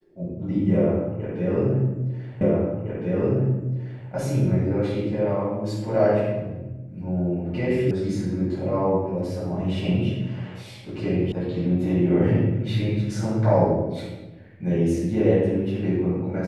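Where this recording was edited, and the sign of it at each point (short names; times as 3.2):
2.41 repeat of the last 1.66 s
7.91 sound cut off
11.32 sound cut off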